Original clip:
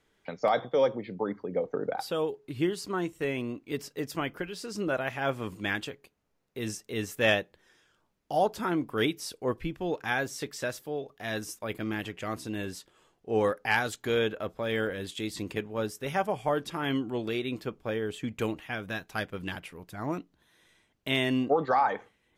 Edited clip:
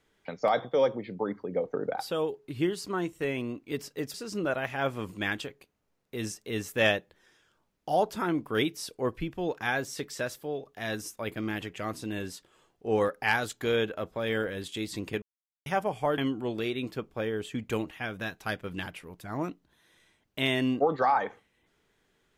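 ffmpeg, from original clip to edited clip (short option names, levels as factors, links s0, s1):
-filter_complex "[0:a]asplit=5[s0][s1][s2][s3][s4];[s0]atrim=end=4.142[s5];[s1]atrim=start=4.568:end=15.65,asetpts=PTS-STARTPTS,afade=t=out:st=11.078:d=0.004:c=hsin[s6];[s2]atrim=start=15.65:end=16.09,asetpts=PTS-STARTPTS,volume=0[s7];[s3]atrim=start=16.09:end=16.612,asetpts=PTS-STARTPTS,afade=t=in:d=0.004:c=hsin[s8];[s4]atrim=start=16.868[s9];[s6][s7][s8]concat=n=3:v=0:a=1[s10];[s5][s10]acrossfade=d=0.004:c1=hsin:c2=hsin[s11];[s11][s9]acrossfade=d=0.004:c1=hsin:c2=hsin"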